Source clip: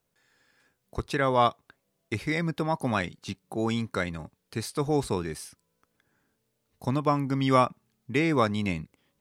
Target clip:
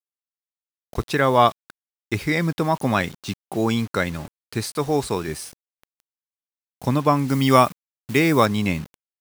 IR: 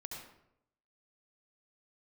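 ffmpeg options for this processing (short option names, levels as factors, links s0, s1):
-filter_complex "[0:a]asettb=1/sr,asplit=3[s0][s1][s2];[s0]atrim=end=4.734[s3];[s1]atrim=start=4.73:end=5.28,asetpts=PTS-STARTPTS,afade=t=in:d=0.004:c=qsin,afade=t=out:st=0.546:d=0.004:c=qsin,lowshelf=f=320:g=-5.5[s4];[s2]atrim=start=5.276[s5];[s3][s4]acrossfade=d=0.004:c1=hsin:c2=qsin[s6];[s6][s5]acrossfade=d=0.004:c1=qsin:c2=hsin,acrusher=bits=7:mix=0:aa=0.000001,asettb=1/sr,asplit=3[s7][s8][s9];[s7]atrim=end=7.284[s10];[s8]atrim=start=7.28:end=8.46,asetpts=PTS-STARTPTS,afade=t=in:d=0.004:c=qsin,afade=t=out:st=1.176:d=0.004:c=qsin,highshelf=f=7200:g=10.5[s11];[s9]atrim=start=8.456[s12];[s10][s11]acrossfade=d=0.004:c1=hsin:c2=qsin[s13];[s13][s12]acrossfade=d=0.004:c1=qsin:c2=hsin,volume=2.11"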